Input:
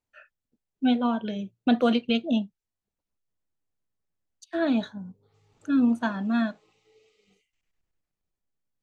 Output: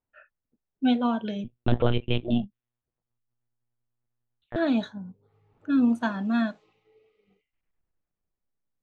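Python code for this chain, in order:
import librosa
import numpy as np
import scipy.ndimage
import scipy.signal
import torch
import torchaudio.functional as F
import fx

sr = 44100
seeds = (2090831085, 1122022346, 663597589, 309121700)

y = fx.env_lowpass(x, sr, base_hz=1700.0, full_db=-23.0)
y = fx.lpc_monotone(y, sr, seeds[0], pitch_hz=120.0, order=10, at=(1.44, 4.56))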